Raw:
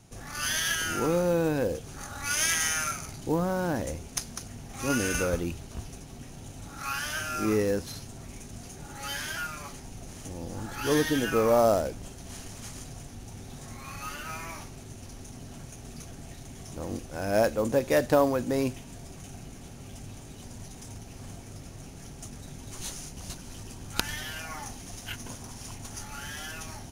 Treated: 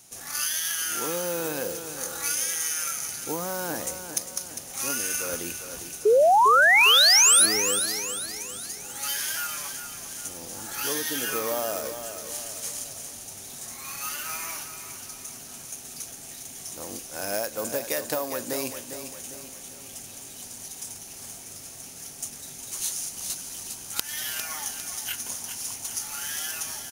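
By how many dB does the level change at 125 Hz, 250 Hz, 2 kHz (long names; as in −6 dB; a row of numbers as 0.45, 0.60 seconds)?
−12.0, −8.0, +7.0 decibels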